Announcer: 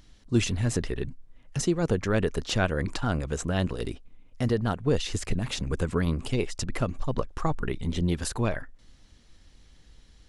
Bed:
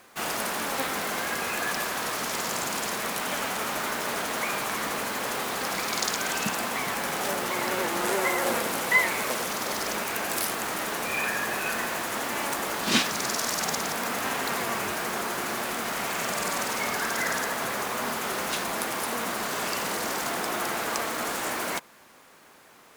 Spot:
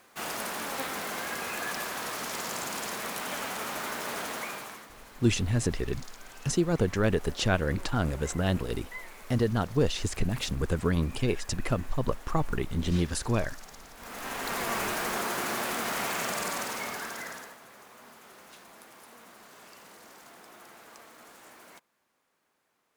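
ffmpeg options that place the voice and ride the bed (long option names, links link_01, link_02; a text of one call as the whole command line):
ffmpeg -i stem1.wav -i stem2.wav -filter_complex "[0:a]adelay=4900,volume=-0.5dB[link_01];[1:a]volume=15dB,afade=type=out:start_time=4.27:duration=0.6:silence=0.158489,afade=type=in:start_time=13.96:duration=0.82:silence=0.1,afade=type=out:start_time=16.02:duration=1.57:silence=0.0891251[link_02];[link_01][link_02]amix=inputs=2:normalize=0" out.wav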